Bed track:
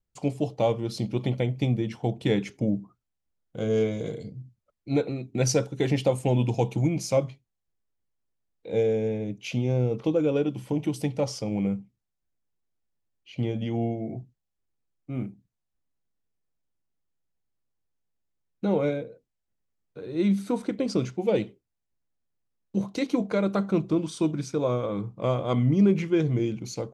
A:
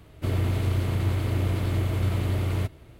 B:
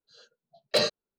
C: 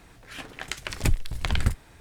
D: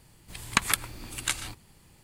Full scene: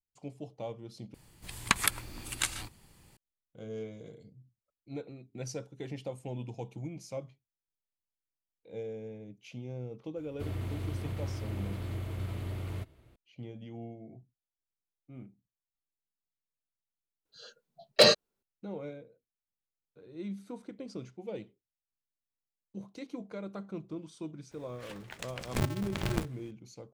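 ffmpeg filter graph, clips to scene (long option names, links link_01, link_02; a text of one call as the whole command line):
ffmpeg -i bed.wav -i cue0.wav -i cue1.wav -i cue2.wav -i cue3.wav -filter_complex "[0:a]volume=-16dB[link_01];[2:a]acontrast=51[link_02];[3:a]aeval=exprs='val(0)*sgn(sin(2*PI*120*n/s))':channel_layout=same[link_03];[link_01]asplit=2[link_04][link_05];[link_04]atrim=end=1.144[link_06];[4:a]atrim=end=2.03,asetpts=PTS-STARTPTS,volume=-2.5dB[link_07];[link_05]atrim=start=3.166[link_08];[1:a]atrim=end=2.99,asetpts=PTS-STARTPTS,volume=-11.5dB,afade=type=in:duration=0.004:curve=hsin,afade=type=out:start_time=2.986:duration=0.004:curve=hsin,adelay=10170[link_09];[link_02]atrim=end=1.18,asetpts=PTS-STARTPTS,volume=-1.5dB,afade=type=in:duration=0.004:curve=hsin,afade=type=out:start_time=1.176:duration=0.004:curve=hsin,adelay=17250[link_10];[link_03]atrim=end=2,asetpts=PTS-STARTPTS,volume=-10dB,afade=type=in:duration=0.004:curve=hsin,afade=type=out:start_time=1.996:duration=0.004:curve=hsin,adelay=24510[link_11];[link_06][link_07]acrossfade=duration=0.004:curve1=hsin:curve2=hsin[link_12];[link_12][link_08]acrossfade=duration=0.004:curve1=hsin:curve2=hsin[link_13];[link_13][link_09][link_10][link_11]amix=inputs=4:normalize=0" out.wav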